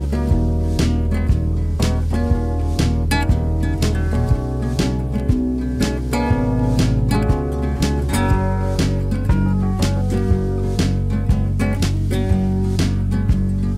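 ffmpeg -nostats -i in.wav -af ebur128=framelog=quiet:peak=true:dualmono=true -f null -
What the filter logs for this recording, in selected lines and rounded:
Integrated loudness:
  I:         -16.3 LUFS
  Threshold: -26.3 LUFS
Loudness range:
  LRA:         0.8 LU
  Threshold: -36.3 LUFS
  LRA low:   -16.7 LUFS
  LRA high:  -15.8 LUFS
True peak:
  Peak:       -5.8 dBFS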